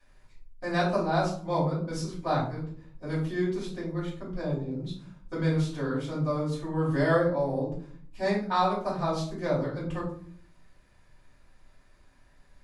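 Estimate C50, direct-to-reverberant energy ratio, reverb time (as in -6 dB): 5.5 dB, -8.0 dB, 0.55 s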